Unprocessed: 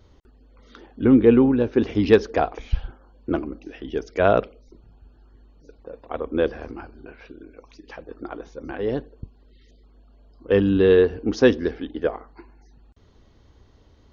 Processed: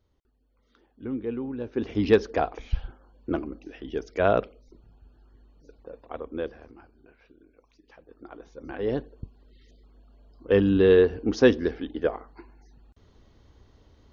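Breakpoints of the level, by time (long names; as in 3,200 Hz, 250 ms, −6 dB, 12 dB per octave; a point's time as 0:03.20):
0:01.41 −17 dB
0:02.01 −4 dB
0:05.92 −4 dB
0:06.71 −14 dB
0:08.03 −14 dB
0:08.90 −2 dB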